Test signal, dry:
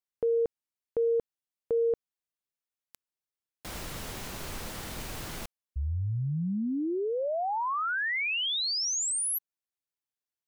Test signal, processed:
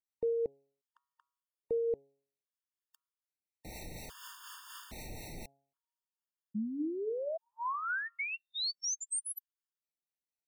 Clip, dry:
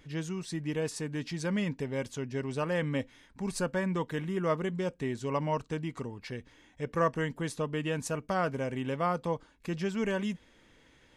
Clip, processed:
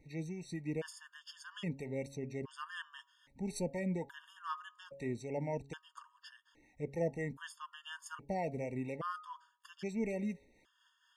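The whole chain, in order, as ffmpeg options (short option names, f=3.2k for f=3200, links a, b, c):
-filter_complex "[0:a]acrossover=split=600[a][b];[a]aeval=exprs='val(0)*(1-0.5/2+0.5/2*cos(2*PI*4.1*n/s))':c=same[c];[b]aeval=exprs='val(0)*(1-0.5/2-0.5/2*cos(2*PI*4.1*n/s))':c=same[d];[c][d]amix=inputs=2:normalize=0,bandreject=f=138.4:t=h:w=4,bandreject=f=276.8:t=h:w=4,bandreject=f=415.2:t=h:w=4,bandreject=f=553.6:t=h:w=4,bandreject=f=692:t=h:w=4,bandreject=f=830.4:t=h:w=4,bandreject=f=968.8:t=h:w=4,bandreject=f=1.1072k:t=h:w=4,bandreject=f=1.2456k:t=h:w=4,bandreject=f=1.384k:t=h:w=4,afftfilt=real='re*gt(sin(2*PI*0.61*pts/sr)*(1-2*mod(floor(b*sr/1024/910),2)),0)':imag='im*gt(sin(2*PI*0.61*pts/sr)*(1-2*mod(floor(b*sr/1024/910),2)),0)':win_size=1024:overlap=0.75,volume=-3dB"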